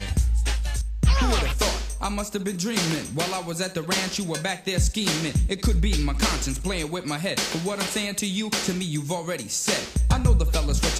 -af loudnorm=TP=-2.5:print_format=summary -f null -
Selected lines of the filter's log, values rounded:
Input Integrated:    -24.8 LUFS
Input True Peak:      -6.9 dBTP
Input LRA:             1.5 LU
Input Threshold:     -34.8 LUFS